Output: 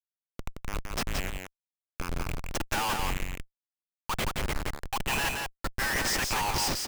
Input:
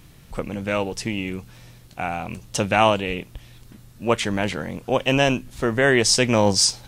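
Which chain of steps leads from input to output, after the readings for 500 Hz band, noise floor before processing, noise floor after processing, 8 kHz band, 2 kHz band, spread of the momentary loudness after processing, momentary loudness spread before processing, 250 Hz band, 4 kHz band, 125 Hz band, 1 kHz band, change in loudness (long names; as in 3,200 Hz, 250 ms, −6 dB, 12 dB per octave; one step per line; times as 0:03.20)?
−17.5 dB, −48 dBFS, below −85 dBFS, −9.0 dB, −7.0 dB, 18 LU, 15 LU, −15.0 dB, −8.5 dB, −10.0 dB, −7.5 dB, −9.5 dB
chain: output level in coarse steps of 19 dB
Chebyshev high-pass filter 800 Hz, order 10
comparator with hysteresis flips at −36.5 dBFS
on a send: single-tap delay 172 ms −4 dB
on the sum: level +2.5 dB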